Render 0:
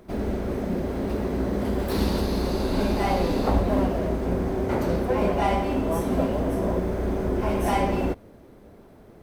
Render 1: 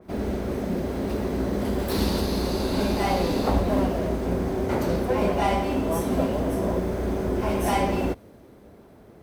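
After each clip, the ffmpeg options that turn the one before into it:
ffmpeg -i in.wav -af "highpass=46,adynamicequalizer=threshold=0.00708:dfrequency=2900:dqfactor=0.7:tfrequency=2900:tqfactor=0.7:attack=5:release=100:ratio=0.375:range=2:mode=boostabove:tftype=highshelf" out.wav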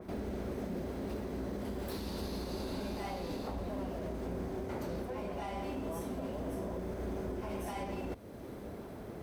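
ffmpeg -i in.wav -af "areverse,acompressor=threshold=-32dB:ratio=6,areverse,alimiter=level_in=10.5dB:limit=-24dB:level=0:latency=1:release=365,volume=-10.5dB,volume=4.5dB" out.wav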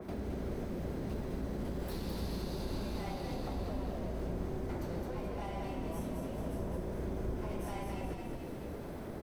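ffmpeg -i in.wav -filter_complex "[0:a]asplit=8[link_01][link_02][link_03][link_04][link_05][link_06][link_07][link_08];[link_02]adelay=213,afreqshift=-31,volume=-4.5dB[link_09];[link_03]adelay=426,afreqshift=-62,volume=-9.9dB[link_10];[link_04]adelay=639,afreqshift=-93,volume=-15.2dB[link_11];[link_05]adelay=852,afreqshift=-124,volume=-20.6dB[link_12];[link_06]adelay=1065,afreqshift=-155,volume=-25.9dB[link_13];[link_07]adelay=1278,afreqshift=-186,volume=-31.3dB[link_14];[link_08]adelay=1491,afreqshift=-217,volume=-36.6dB[link_15];[link_01][link_09][link_10][link_11][link_12][link_13][link_14][link_15]amix=inputs=8:normalize=0,acrossover=split=140[link_16][link_17];[link_17]acompressor=threshold=-45dB:ratio=2[link_18];[link_16][link_18]amix=inputs=2:normalize=0,volume=2.5dB" out.wav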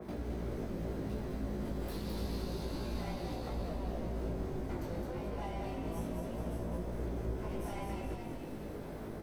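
ffmpeg -i in.wav -af "flanger=delay=17:depth=2.4:speed=0.3,volume=2.5dB" out.wav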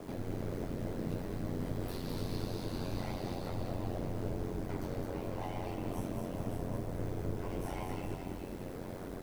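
ffmpeg -i in.wav -af "acrusher=bits=9:mix=0:aa=0.000001,aeval=exprs='val(0)*sin(2*PI*45*n/s)':channel_layout=same,volume=3.5dB" out.wav

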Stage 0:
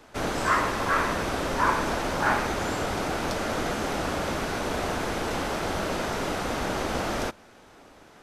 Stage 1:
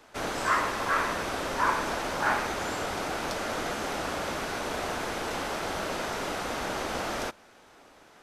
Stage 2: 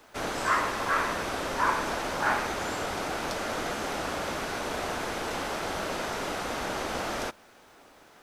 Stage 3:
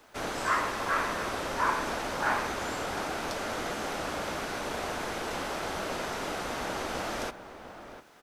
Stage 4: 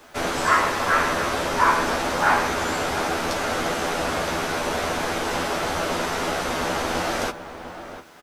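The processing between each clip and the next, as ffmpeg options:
ffmpeg -i in.wav -af "lowshelf=frequency=330:gain=-7.5,volume=-1.5dB" out.wav
ffmpeg -i in.wav -af "acrusher=bits=10:mix=0:aa=0.000001" out.wav
ffmpeg -i in.wav -filter_complex "[0:a]asplit=2[link_01][link_02];[link_02]adelay=699.7,volume=-11dB,highshelf=frequency=4000:gain=-15.7[link_03];[link_01][link_03]amix=inputs=2:normalize=0,volume=-2dB" out.wav
ffmpeg -i in.wav -filter_complex "[0:a]asplit=2[link_01][link_02];[link_02]adelay=12,volume=-4dB[link_03];[link_01][link_03]amix=inputs=2:normalize=0,volume=7.5dB" out.wav

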